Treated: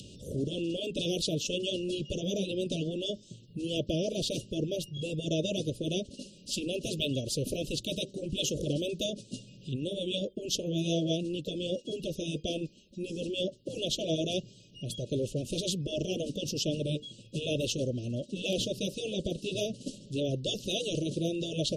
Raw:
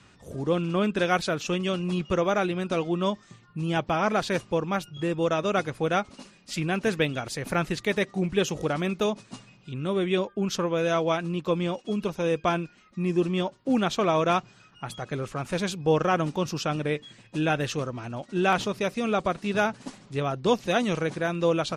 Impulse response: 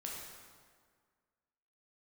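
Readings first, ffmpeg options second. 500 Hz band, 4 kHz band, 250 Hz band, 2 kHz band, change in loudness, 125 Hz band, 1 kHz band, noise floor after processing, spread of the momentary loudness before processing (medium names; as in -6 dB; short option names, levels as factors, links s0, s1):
-7.0 dB, +2.0 dB, -6.0 dB, -14.0 dB, -6.0 dB, -4.5 dB, under -20 dB, -55 dBFS, 9 LU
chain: -af "asuperstop=centerf=1300:order=20:qfactor=0.6,acompressor=mode=upward:threshold=0.00708:ratio=2.5,afftfilt=real='re*lt(hypot(re,im),0.282)':imag='im*lt(hypot(re,im),0.282)':win_size=1024:overlap=0.75,volume=1.26"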